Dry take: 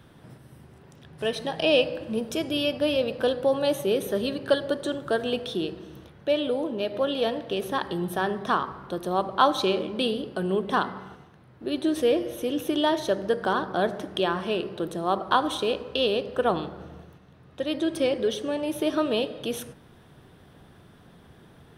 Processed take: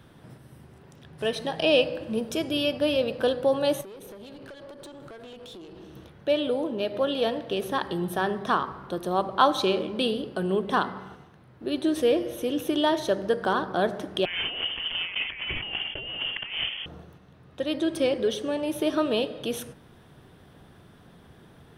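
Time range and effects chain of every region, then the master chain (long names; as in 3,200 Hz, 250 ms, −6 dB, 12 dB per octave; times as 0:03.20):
0:03.81–0:05.96: downward compressor 16 to 1, threshold −35 dBFS + tube saturation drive 39 dB, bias 0.4
0:14.25–0:16.86: one scale factor per block 3 bits + compressor whose output falls as the input rises −32 dBFS + voice inversion scrambler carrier 3,300 Hz
whole clip: no processing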